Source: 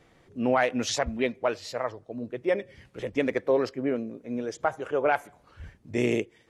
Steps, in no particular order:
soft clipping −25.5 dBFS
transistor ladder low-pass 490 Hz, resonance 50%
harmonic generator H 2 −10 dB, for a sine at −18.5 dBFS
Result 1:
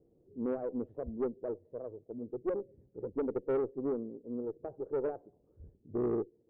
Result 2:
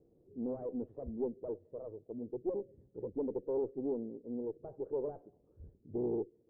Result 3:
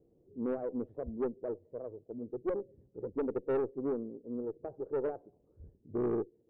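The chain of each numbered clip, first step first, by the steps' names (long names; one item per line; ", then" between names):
transistor ladder low-pass, then soft clipping, then harmonic generator
soft clipping, then transistor ladder low-pass, then harmonic generator
transistor ladder low-pass, then harmonic generator, then soft clipping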